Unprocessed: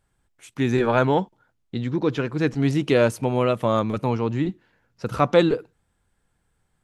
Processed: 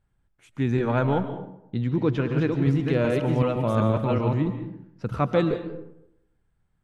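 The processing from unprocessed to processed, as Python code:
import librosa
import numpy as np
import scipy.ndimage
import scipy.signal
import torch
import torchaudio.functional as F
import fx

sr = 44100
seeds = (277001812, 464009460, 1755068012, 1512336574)

y = fx.reverse_delay(x, sr, ms=379, wet_db=-2, at=(1.91, 4.38))
y = fx.bass_treble(y, sr, bass_db=7, treble_db=-8)
y = fx.rider(y, sr, range_db=10, speed_s=0.5)
y = fx.rev_freeverb(y, sr, rt60_s=0.8, hf_ratio=0.5, predelay_ms=100, drr_db=9.0)
y = F.gain(torch.from_numpy(y), -5.0).numpy()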